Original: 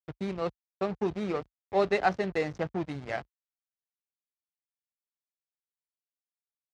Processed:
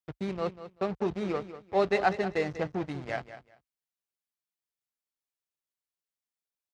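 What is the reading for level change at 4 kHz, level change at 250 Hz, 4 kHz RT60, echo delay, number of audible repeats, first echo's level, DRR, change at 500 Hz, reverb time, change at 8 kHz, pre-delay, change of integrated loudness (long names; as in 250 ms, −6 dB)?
0.0 dB, 0.0 dB, no reverb audible, 193 ms, 2, −13.0 dB, no reverb audible, 0.0 dB, no reverb audible, can't be measured, no reverb audible, 0.0 dB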